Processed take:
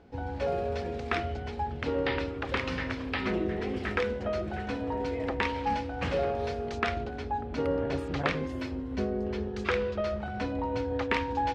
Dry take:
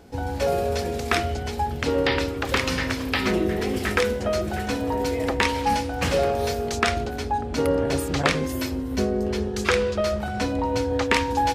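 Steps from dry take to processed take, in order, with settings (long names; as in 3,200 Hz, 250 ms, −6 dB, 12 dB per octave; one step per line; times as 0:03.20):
low-pass filter 3,200 Hz 12 dB per octave
level −7 dB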